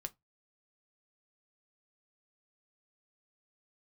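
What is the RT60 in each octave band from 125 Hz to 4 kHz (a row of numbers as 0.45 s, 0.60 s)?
0.30 s, 0.20 s, 0.15 s, 0.15 s, 0.15 s, 0.15 s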